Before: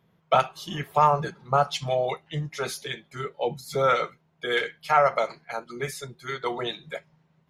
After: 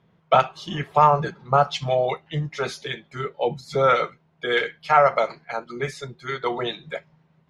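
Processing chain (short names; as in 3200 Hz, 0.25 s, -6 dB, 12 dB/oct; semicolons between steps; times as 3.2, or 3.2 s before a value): air absorption 88 m; gain +4 dB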